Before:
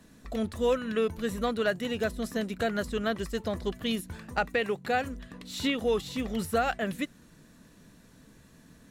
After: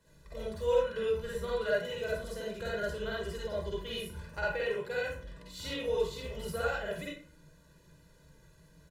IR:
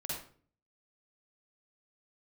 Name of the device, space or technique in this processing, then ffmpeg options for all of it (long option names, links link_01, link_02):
microphone above a desk: -filter_complex "[0:a]aecho=1:1:2:0.81[link_01];[1:a]atrim=start_sample=2205[link_02];[link_01][link_02]afir=irnorm=-1:irlink=0,volume=-8.5dB"